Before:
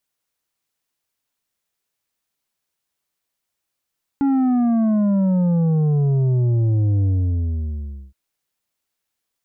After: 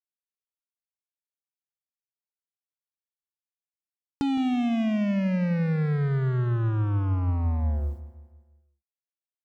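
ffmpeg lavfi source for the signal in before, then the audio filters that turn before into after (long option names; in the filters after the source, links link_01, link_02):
-f lavfi -i "aevalsrc='0.168*clip((3.92-t)/1.09,0,1)*tanh(2.24*sin(2*PI*280*3.92/log(65/280)*(exp(log(65/280)*t/3.92)-1)))/tanh(2.24)':duration=3.92:sample_rate=44100"
-af "acompressor=threshold=-25dB:ratio=12,acrusher=bits=4:mix=0:aa=0.5,aecho=1:1:164|328|492|656|820:0.178|0.0871|0.0427|0.0209|0.0103"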